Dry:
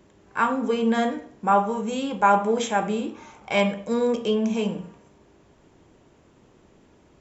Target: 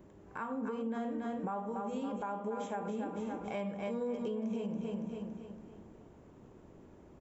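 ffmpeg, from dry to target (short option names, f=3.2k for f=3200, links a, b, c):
-af "aecho=1:1:281|562|843|1124|1405:0.398|0.163|0.0669|0.0274|0.0112,acompressor=threshold=-35dB:ratio=2.5,equalizer=f=4.3k:w=0.39:g=-12,alimiter=level_in=5dB:limit=-24dB:level=0:latency=1:release=137,volume=-5dB"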